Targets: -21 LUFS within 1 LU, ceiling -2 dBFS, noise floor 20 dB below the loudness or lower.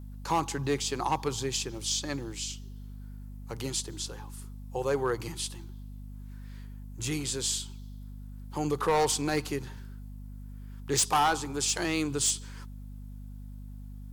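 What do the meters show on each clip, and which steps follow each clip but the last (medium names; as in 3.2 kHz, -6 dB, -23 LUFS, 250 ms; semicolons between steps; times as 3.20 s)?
clipped samples 0.6%; clipping level -20.0 dBFS; hum 50 Hz; highest harmonic 250 Hz; hum level -40 dBFS; loudness -30.0 LUFS; peak level -20.0 dBFS; loudness target -21.0 LUFS
-> clip repair -20 dBFS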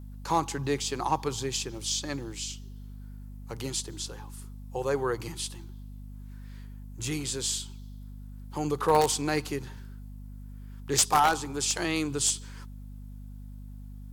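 clipped samples 0.0%; hum 50 Hz; highest harmonic 250 Hz; hum level -40 dBFS
-> de-hum 50 Hz, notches 5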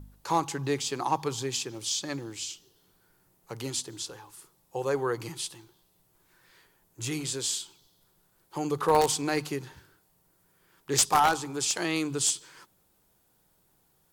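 hum not found; loudness -29.0 LUFS; peak level -10.5 dBFS; loudness target -21.0 LUFS
-> trim +8 dB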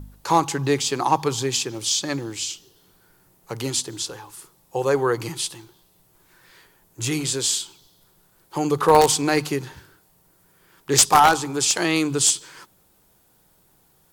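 loudness -21.0 LUFS; peak level -2.5 dBFS; noise floor -60 dBFS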